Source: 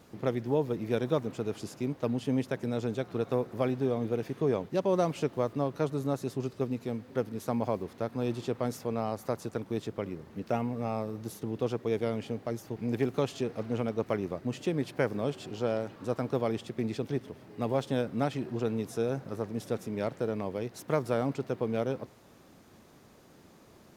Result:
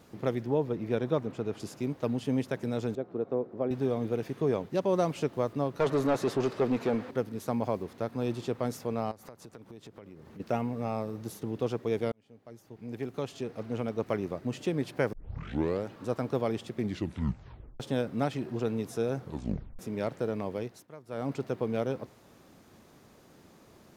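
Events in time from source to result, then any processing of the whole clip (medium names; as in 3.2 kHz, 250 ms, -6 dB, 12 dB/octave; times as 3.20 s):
0.46–1.60 s: treble shelf 4.9 kHz -10.5 dB
2.95–3.71 s: band-pass filter 380 Hz, Q 0.84
5.80–7.11 s: overdrive pedal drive 23 dB, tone 1.7 kHz, clips at -16.5 dBFS
9.11–10.40 s: compression 5:1, threshold -45 dBFS
12.12–14.17 s: fade in
15.13 s: tape start 0.73 s
16.79 s: tape stop 1.01 s
19.17 s: tape stop 0.62 s
20.60–21.34 s: dip -19.5 dB, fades 0.28 s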